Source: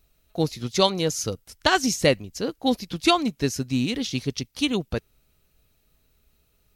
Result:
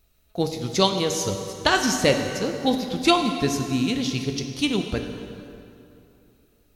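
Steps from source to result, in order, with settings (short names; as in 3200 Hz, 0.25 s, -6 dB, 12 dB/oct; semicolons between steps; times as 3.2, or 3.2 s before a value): plate-style reverb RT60 2.8 s, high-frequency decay 0.7×, DRR 4.5 dB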